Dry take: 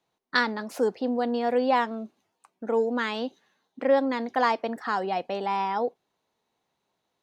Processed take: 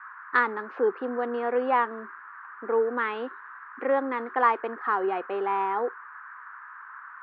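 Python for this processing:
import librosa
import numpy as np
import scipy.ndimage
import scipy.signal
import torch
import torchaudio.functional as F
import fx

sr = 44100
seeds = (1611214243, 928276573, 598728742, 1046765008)

y = fx.cabinet(x, sr, low_hz=360.0, low_slope=12, high_hz=2400.0, hz=(380.0, 630.0, 1200.0), db=(9, -9, 7))
y = fx.dmg_noise_band(y, sr, seeds[0], low_hz=1000.0, high_hz=1700.0, level_db=-44.0)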